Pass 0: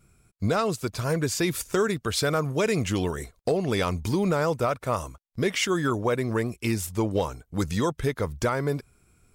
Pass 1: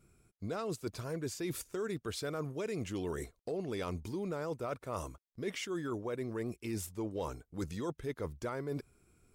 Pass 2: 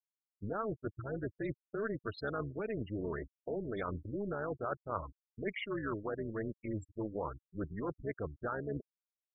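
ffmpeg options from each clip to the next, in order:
-af "equalizer=f=350:t=o:w=1.1:g=6,areverse,acompressor=threshold=0.0398:ratio=6,areverse,volume=0.447"
-af "adynamicequalizer=threshold=0.00141:dfrequency=1600:dqfactor=1.2:tfrequency=1600:tqfactor=1.2:attack=5:release=100:ratio=0.375:range=3.5:mode=boostabove:tftype=bell,afftfilt=real='re*gte(hypot(re,im),0.0316)':imag='im*gte(hypot(re,im),0.0316)':win_size=1024:overlap=0.75,tremolo=f=210:d=0.621,volume=1.26"

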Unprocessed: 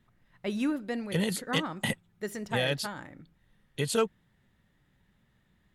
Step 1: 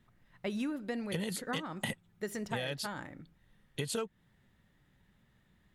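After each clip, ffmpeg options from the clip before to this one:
-af "acompressor=threshold=0.0251:ratio=10"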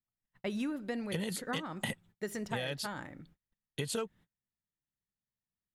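-af "agate=range=0.0282:threshold=0.00112:ratio=16:detection=peak"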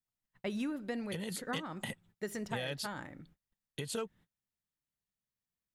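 -af "alimiter=limit=0.0631:level=0:latency=1:release=268,volume=0.891"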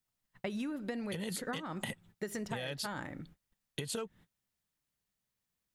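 -af "acompressor=threshold=0.00891:ratio=6,volume=2"

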